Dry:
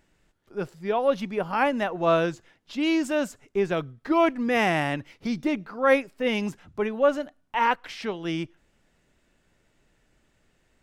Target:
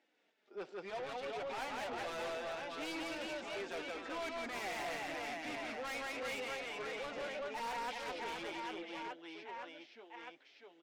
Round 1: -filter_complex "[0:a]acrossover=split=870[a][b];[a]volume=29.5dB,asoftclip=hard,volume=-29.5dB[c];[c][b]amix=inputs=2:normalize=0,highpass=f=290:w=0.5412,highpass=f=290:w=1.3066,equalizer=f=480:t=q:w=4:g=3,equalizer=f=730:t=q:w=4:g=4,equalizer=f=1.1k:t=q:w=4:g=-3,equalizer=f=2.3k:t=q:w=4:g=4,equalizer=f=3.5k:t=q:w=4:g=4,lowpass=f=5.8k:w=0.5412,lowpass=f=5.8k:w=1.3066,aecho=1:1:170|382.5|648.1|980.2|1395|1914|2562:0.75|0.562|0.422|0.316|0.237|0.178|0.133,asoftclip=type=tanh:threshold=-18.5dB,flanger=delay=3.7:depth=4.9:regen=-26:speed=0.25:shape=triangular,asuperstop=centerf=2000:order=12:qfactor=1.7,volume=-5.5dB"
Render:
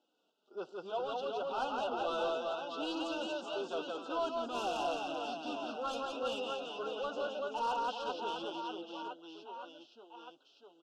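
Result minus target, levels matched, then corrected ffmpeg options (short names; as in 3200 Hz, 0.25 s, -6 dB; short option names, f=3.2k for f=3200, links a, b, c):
2000 Hz band -8.0 dB; soft clip: distortion -10 dB
-filter_complex "[0:a]acrossover=split=870[a][b];[a]volume=29.5dB,asoftclip=hard,volume=-29.5dB[c];[c][b]amix=inputs=2:normalize=0,highpass=f=290:w=0.5412,highpass=f=290:w=1.3066,equalizer=f=480:t=q:w=4:g=3,equalizer=f=730:t=q:w=4:g=4,equalizer=f=1.1k:t=q:w=4:g=-3,equalizer=f=2.3k:t=q:w=4:g=4,equalizer=f=3.5k:t=q:w=4:g=4,lowpass=f=5.8k:w=0.5412,lowpass=f=5.8k:w=1.3066,aecho=1:1:170|382.5|648.1|980.2|1395|1914|2562:0.75|0.562|0.422|0.316|0.237|0.178|0.133,asoftclip=type=tanh:threshold=-30dB,flanger=delay=3.7:depth=4.9:regen=-26:speed=0.25:shape=triangular,volume=-5.5dB"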